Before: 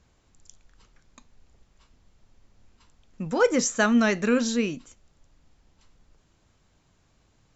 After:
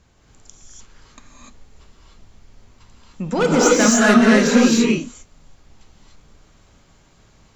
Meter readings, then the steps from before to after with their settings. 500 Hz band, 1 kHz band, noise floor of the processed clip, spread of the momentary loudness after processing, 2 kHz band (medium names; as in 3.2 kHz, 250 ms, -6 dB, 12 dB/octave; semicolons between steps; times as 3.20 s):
+8.0 dB, +9.5 dB, -55 dBFS, 11 LU, +8.5 dB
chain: in parallel at -6.5 dB: sine folder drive 9 dB, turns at -9 dBFS; on the sum: gated-style reverb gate 320 ms rising, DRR -5 dB; trim -4 dB